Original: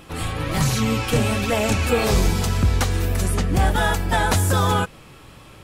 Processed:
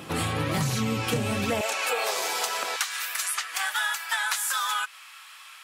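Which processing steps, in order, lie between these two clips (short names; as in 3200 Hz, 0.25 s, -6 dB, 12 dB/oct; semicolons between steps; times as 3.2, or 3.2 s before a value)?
HPF 99 Hz 24 dB/oct, from 1.61 s 560 Hz, from 2.76 s 1200 Hz; compressor 6:1, threshold -28 dBFS, peak gain reduction 12.5 dB; gain +4 dB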